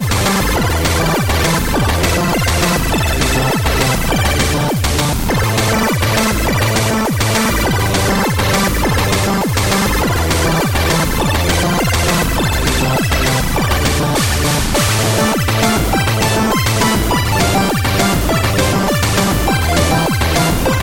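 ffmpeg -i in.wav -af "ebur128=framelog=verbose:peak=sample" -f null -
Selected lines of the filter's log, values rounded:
Integrated loudness:
  I:         -13.9 LUFS
  Threshold: -23.9 LUFS
Loudness range:
  LRA:         0.6 LU
  Threshold: -33.9 LUFS
  LRA low:   -14.2 LUFS
  LRA high:  -13.6 LUFS
Sample peak:
  Peak:       -1.9 dBFS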